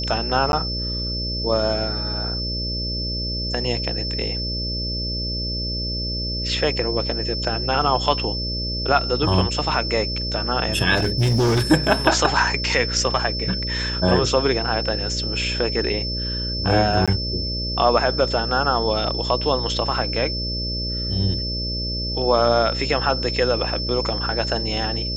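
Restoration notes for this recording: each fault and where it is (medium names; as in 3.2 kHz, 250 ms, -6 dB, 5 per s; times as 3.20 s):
buzz 60 Hz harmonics 10 -28 dBFS
whine 5.3 kHz -26 dBFS
0.52–0.53 s: dropout 11 ms
10.95–11.62 s: clipped -15 dBFS
17.06–17.08 s: dropout 16 ms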